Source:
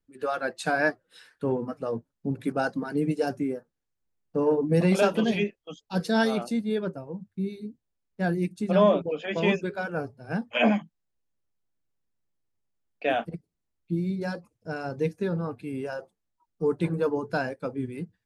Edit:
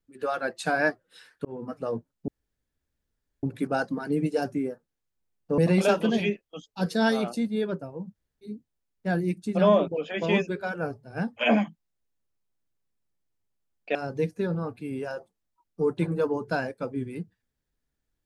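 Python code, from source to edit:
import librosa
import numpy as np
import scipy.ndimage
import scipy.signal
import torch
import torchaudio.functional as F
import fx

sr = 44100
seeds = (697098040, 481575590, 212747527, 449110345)

y = fx.edit(x, sr, fx.fade_in_span(start_s=1.45, length_s=0.3),
    fx.insert_room_tone(at_s=2.28, length_s=1.15),
    fx.cut(start_s=4.43, length_s=0.29),
    fx.room_tone_fill(start_s=7.28, length_s=0.29, crossfade_s=0.04),
    fx.cut(start_s=13.09, length_s=1.68), tone=tone)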